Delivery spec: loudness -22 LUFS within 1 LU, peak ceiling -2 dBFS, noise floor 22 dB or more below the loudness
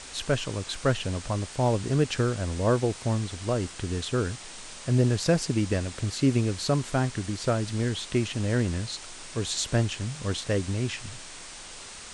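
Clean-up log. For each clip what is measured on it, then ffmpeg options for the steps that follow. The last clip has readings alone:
noise floor -43 dBFS; noise floor target -50 dBFS; loudness -28.0 LUFS; peak level -11.0 dBFS; loudness target -22.0 LUFS
-> -af "afftdn=nr=7:nf=-43"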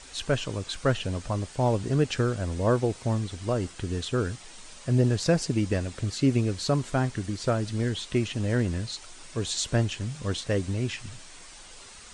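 noise floor -47 dBFS; noise floor target -50 dBFS
-> -af "afftdn=nr=6:nf=-47"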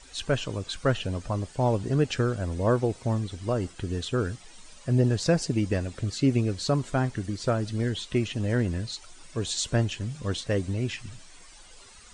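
noise floor -50 dBFS; loudness -28.0 LUFS; peak level -11.5 dBFS; loudness target -22.0 LUFS
-> -af "volume=2"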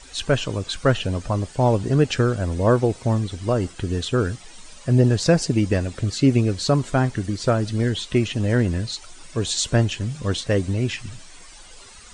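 loudness -22.0 LUFS; peak level -5.5 dBFS; noise floor -44 dBFS

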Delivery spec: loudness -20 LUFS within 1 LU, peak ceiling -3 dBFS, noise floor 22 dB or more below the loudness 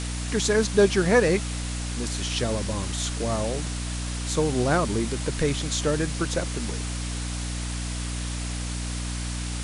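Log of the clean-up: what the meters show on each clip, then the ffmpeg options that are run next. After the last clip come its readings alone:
hum 60 Hz; highest harmonic 300 Hz; hum level -28 dBFS; noise floor -31 dBFS; noise floor target -48 dBFS; loudness -26.0 LUFS; peak level -7.0 dBFS; loudness target -20.0 LUFS
-> -af "bandreject=f=60:t=h:w=4,bandreject=f=120:t=h:w=4,bandreject=f=180:t=h:w=4,bandreject=f=240:t=h:w=4,bandreject=f=300:t=h:w=4"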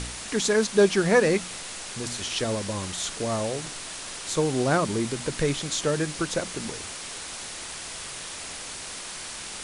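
hum not found; noise floor -38 dBFS; noise floor target -49 dBFS
-> -af "afftdn=nr=11:nf=-38"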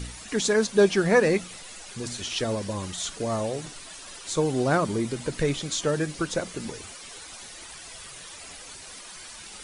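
noise floor -43 dBFS; noise floor target -48 dBFS
-> -af "afftdn=nr=6:nf=-43"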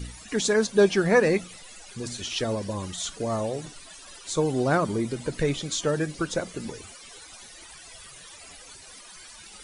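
noise floor -47 dBFS; noise floor target -48 dBFS
-> -af "afftdn=nr=6:nf=-47"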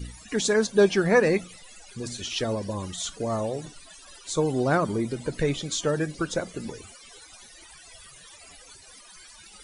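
noise floor -50 dBFS; loudness -26.0 LUFS; peak level -8.0 dBFS; loudness target -20.0 LUFS
-> -af "volume=2,alimiter=limit=0.708:level=0:latency=1"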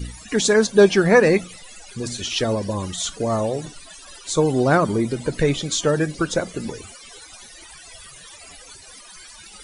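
loudness -20.0 LUFS; peak level -3.0 dBFS; noise floor -44 dBFS

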